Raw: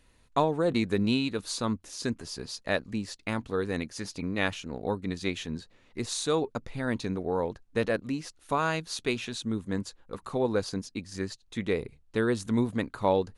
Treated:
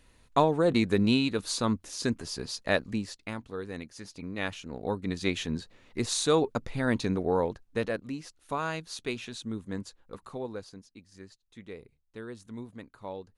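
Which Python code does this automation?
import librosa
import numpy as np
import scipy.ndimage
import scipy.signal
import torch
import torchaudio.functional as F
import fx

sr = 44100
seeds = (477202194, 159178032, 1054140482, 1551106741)

y = fx.gain(x, sr, db=fx.line((2.91, 2.0), (3.42, -7.5), (4.09, -7.5), (5.4, 3.0), (7.32, 3.0), (7.99, -4.5), (10.13, -4.5), (10.79, -15.0)))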